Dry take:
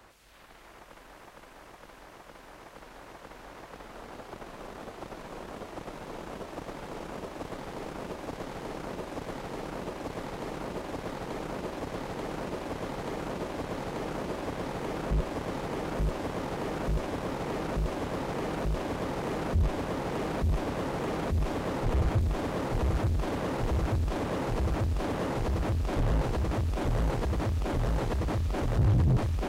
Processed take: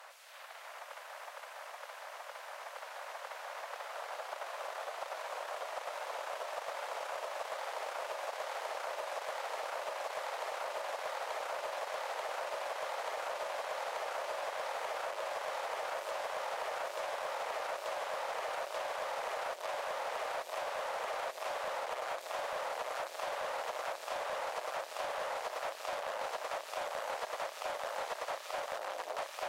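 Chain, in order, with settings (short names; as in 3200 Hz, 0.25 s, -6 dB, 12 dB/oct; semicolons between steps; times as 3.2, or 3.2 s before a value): elliptic high-pass 570 Hz, stop band 80 dB; sine folder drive 4 dB, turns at -22.5 dBFS; compressor, threshold -32 dBFS, peak gain reduction 6 dB; gain -3 dB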